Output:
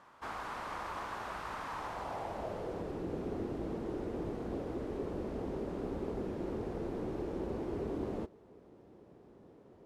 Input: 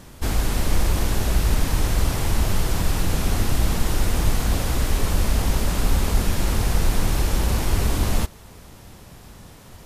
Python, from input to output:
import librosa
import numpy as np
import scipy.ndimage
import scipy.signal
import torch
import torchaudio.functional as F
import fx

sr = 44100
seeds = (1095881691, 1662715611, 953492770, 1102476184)

y = fx.filter_sweep_bandpass(x, sr, from_hz=1100.0, to_hz=380.0, start_s=1.72, end_s=2.99, q=2.2)
y = F.gain(torch.from_numpy(y), -3.0).numpy()